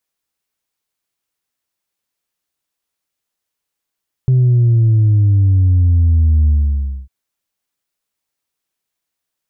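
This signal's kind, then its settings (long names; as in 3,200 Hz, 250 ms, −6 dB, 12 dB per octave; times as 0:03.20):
bass drop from 130 Hz, over 2.80 s, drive 1 dB, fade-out 0.60 s, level −8.5 dB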